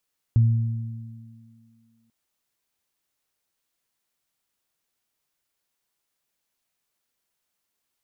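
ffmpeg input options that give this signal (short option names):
-f lavfi -i "aevalsrc='0.237*pow(10,-3*t/1.76)*sin(2*PI*114*t)+0.0316*pow(10,-3*t/3.03)*sin(2*PI*228*t)':d=1.74:s=44100"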